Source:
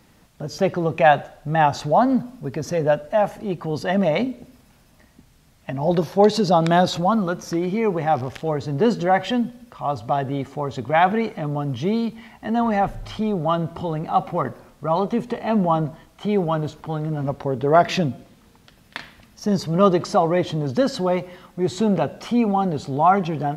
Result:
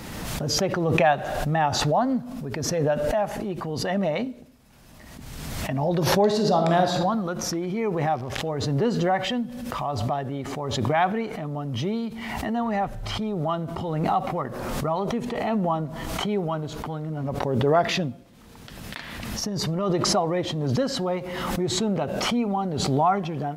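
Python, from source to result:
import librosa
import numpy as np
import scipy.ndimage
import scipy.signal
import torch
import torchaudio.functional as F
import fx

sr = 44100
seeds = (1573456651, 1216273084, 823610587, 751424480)

y = fx.reverb_throw(x, sr, start_s=6.22, length_s=0.7, rt60_s=1.0, drr_db=4.0)
y = fx.over_compress(y, sr, threshold_db=-23.0, ratio=-1.0, at=(18.97, 19.9))
y = fx.pre_swell(y, sr, db_per_s=28.0)
y = y * 10.0 ** (-6.0 / 20.0)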